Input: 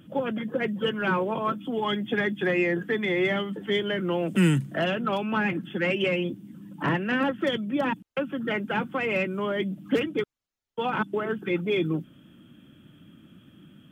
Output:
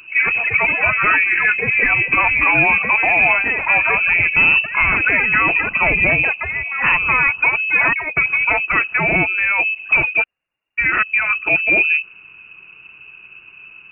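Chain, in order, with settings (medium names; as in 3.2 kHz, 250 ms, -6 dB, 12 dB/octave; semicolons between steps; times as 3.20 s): ever faster or slower copies 84 ms, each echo +6 st, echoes 2, each echo -6 dB; frequency inversion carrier 2.8 kHz; loudness maximiser +14.5 dB; trim -4 dB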